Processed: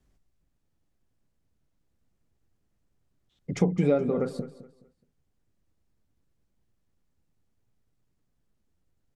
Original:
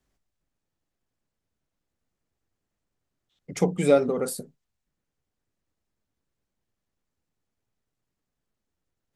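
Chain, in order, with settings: compression 2:1, threshold -29 dBFS, peak gain reduction 9 dB; bass shelf 310 Hz +10 dB; low-pass that closes with the level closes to 2.9 kHz, closed at -25.5 dBFS; feedback delay 211 ms, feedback 29%, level -15.5 dB

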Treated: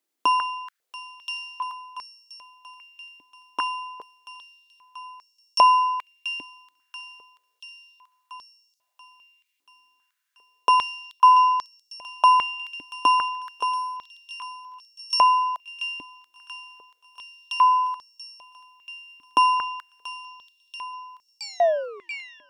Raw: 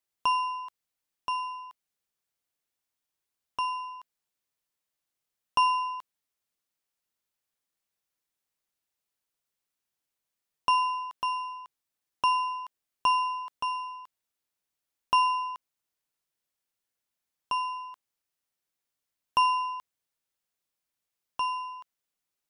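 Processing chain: tape stop on the ending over 1.28 s; feedback echo behind a high-pass 684 ms, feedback 64%, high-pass 2.1 kHz, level -10 dB; step-sequenced high-pass 2.5 Hz 290–5400 Hz; trim +4.5 dB

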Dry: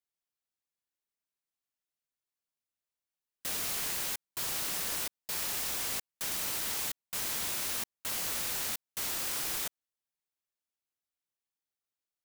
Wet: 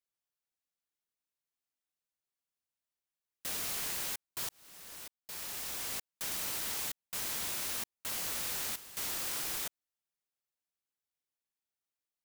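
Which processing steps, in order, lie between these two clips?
4.49–6.14 s: fade in; 8.42–9.42 s: word length cut 8-bit, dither triangular; trim -2.5 dB

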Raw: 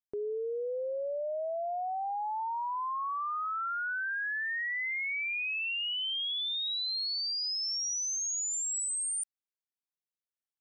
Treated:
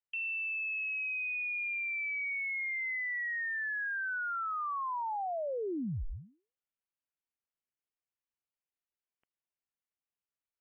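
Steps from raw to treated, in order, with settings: frequency inversion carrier 3.1 kHz; trim -1.5 dB

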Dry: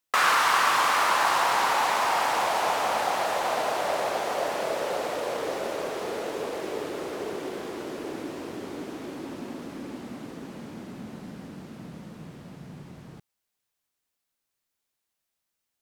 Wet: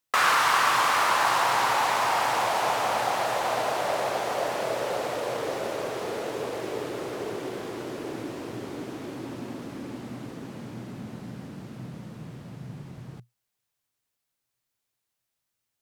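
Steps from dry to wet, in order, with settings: peaking EQ 120 Hz +12.5 dB 0.31 oct

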